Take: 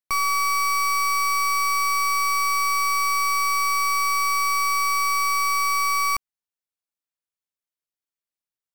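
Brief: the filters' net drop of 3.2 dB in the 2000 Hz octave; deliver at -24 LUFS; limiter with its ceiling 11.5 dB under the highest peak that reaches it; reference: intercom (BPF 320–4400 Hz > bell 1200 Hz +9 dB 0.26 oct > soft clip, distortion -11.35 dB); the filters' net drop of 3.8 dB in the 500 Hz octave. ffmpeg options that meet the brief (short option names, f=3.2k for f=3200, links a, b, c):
-af "equalizer=f=500:t=o:g=-3.5,equalizer=f=2k:t=o:g=-3.5,alimiter=level_in=8dB:limit=-24dB:level=0:latency=1,volume=-8dB,highpass=320,lowpass=4.4k,equalizer=f=1.2k:t=o:w=0.26:g=9,asoftclip=threshold=-35dB,volume=12dB"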